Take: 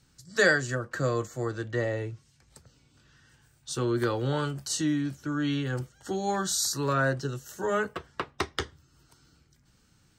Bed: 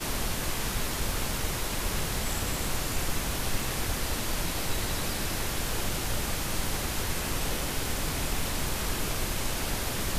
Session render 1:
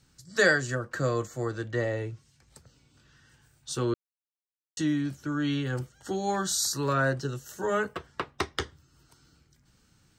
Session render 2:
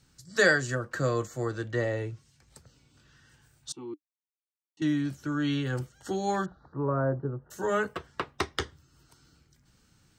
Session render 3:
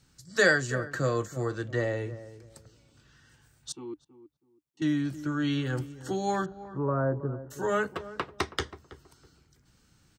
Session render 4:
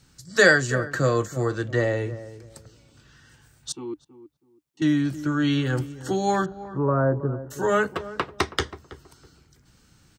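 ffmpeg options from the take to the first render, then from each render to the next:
-filter_complex "[0:a]asplit=3[s0][s1][s2];[s0]atrim=end=3.94,asetpts=PTS-STARTPTS,afade=t=out:st=3.936:d=0.004:c=hsin[s3];[s1]atrim=start=3.94:end=4.77,asetpts=PTS-STARTPTS,volume=0[s4];[s2]atrim=start=4.77,asetpts=PTS-STARTPTS,afade=t=in:d=0.004:c=hsin[s5];[s3][s4][s5]concat=n=3:v=0:a=1"
-filter_complex "[0:a]asettb=1/sr,asplit=3[s0][s1][s2];[s0]atrim=end=3.724[s3];[s1]atrim=start=3.72:end=4.82,asetpts=PTS-STARTPTS,afade=t=in:d=0.004:c=qsin,afade=t=out:st=1.096:d=0.004:c=qsin,asplit=3[s4][s5][s6];[s4]bandpass=f=300:t=q:w=8,volume=1[s7];[s5]bandpass=f=870:t=q:w=8,volume=0.501[s8];[s6]bandpass=f=2240:t=q:w=8,volume=0.355[s9];[s7][s8][s9]amix=inputs=3:normalize=0[s10];[s2]atrim=start=4.816[s11];[s3][s10]acrossfade=d=0.004:c1=hsin:c2=qsin[s12];[s12][s11]acrossfade=d=0.004:c1=qsin:c2=hsin,asplit=3[s13][s14][s15];[s13]afade=t=out:st=6.44:d=0.02[s16];[s14]lowpass=f=1100:w=0.5412,lowpass=f=1100:w=1.3066,afade=t=in:st=6.44:d=0.02,afade=t=out:st=7.5:d=0.02[s17];[s15]afade=t=in:st=7.5:d=0.02[s18];[s16][s17][s18]amix=inputs=3:normalize=0"
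-filter_complex "[0:a]asplit=2[s0][s1];[s1]adelay=324,lowpass=f=980:p=1,volume=0.2,asplit=2[s2][s3];[s3]adelay=324,lowpass=f=980:p=1,volume=0.25,asplit=2[s4][s5];[s5]adelay=324,lowpass=f=980:p=1,volume=0.25[s6];[s0][s2][s4][s6]amix=inputs=4:normalize=0"
-af "volume=2"

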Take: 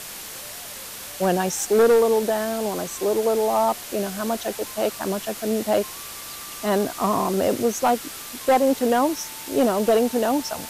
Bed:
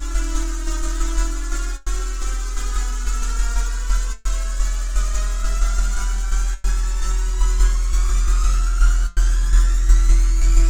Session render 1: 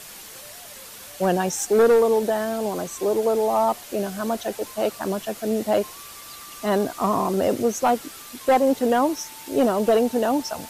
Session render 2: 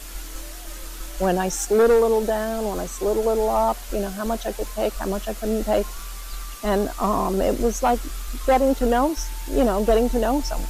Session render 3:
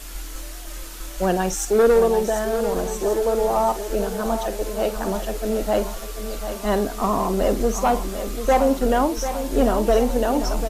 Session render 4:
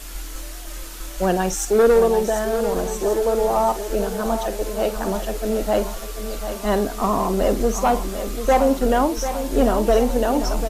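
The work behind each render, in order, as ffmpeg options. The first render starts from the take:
-af "afftdn=nr=6:nf=-37"
-filter_complex "[1:a]volume=0.188[s0];[0:a][s0]amix=inputs=2:normalize=0"
-filter_complex "[0:a]asplit=2[s0][s1];[s1]adelay=48,volume=0.224[s2];[s0][s2]amix=inputs=2:normalize=0,aecho=1:1:742|1484|2226|2968|3710|4452:0.316|0.171|0.0922|0.0498|0.0269|0.0145"
-af "volume=1.12"

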